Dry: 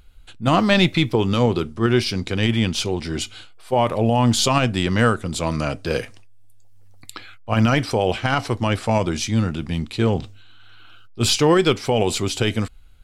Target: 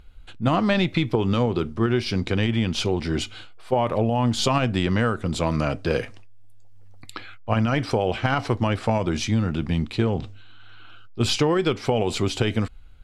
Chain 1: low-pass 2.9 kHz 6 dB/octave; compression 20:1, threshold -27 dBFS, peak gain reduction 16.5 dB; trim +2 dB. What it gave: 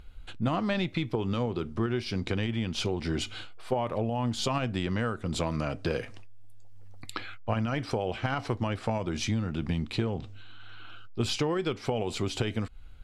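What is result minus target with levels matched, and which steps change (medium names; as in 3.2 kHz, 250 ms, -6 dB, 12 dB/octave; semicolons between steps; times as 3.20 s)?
compression: peak gain reduction +8 dB
change: compression 20:1, threshold -18.5 dBFS, peak gain reduction 8.5 dB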